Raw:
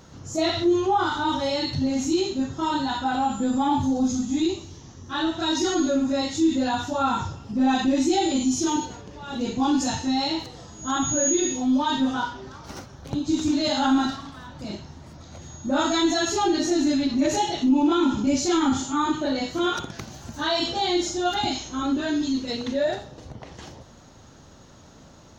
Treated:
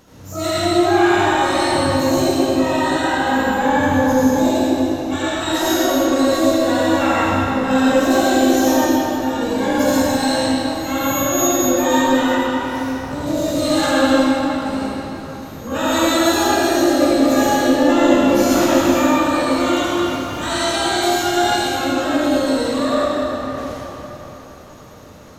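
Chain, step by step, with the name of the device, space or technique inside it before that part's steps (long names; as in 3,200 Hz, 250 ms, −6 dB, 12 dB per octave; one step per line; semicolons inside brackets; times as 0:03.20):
shimmer-style reverb (pitch-shifted copies added +12 semitones −5 dB; convolution reverb RT60 4.0 s, pre-delay 62 ms, DRR −9 dB)
level −3 dB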